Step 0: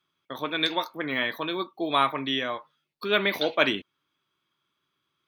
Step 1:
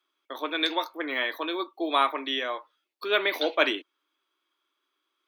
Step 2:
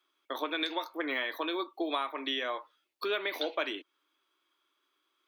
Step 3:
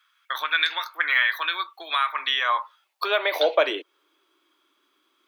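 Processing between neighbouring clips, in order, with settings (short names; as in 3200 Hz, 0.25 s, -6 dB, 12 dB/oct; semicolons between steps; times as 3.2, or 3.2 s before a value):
Chebyshev high-pass 300 Hz, order 4
compressor 6:1, threshold -31 dBFS, peak gain reduction 14 dB; gain +1.5 dB
high-pass sweep 1500 Hz -> 220 Hz, 2–4.87; gain +8.5 dB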